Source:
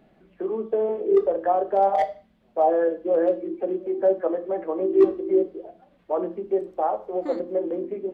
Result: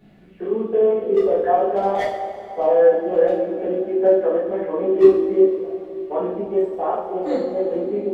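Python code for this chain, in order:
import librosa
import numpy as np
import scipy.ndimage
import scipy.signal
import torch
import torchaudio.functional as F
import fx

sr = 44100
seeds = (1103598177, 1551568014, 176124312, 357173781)

y = fx.peak_eq(x, sr, hz=750.0, db=-6.5, octaves=2.3)
y = fx.rev_double_slope(y, sr, seeds[0], early_s=0.55, late_s=3.6, knee_db=-16, drr_db=-8.0)
y = F.gain(torch.from_numpy(y), 1.0).numpy()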